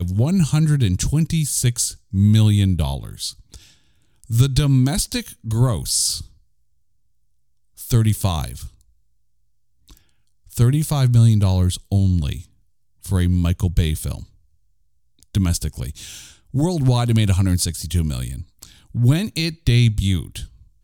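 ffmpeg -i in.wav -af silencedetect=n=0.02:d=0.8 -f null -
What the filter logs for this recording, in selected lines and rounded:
silence_start: 6.26
silence_end: 7.78 | silence_duration: 1.52
silence_start: 8.68
silence_end: 9.90 | silence_duration: 1.22
silence_start: 14.23
silence_end: 15.23 | silence_duration: 0.99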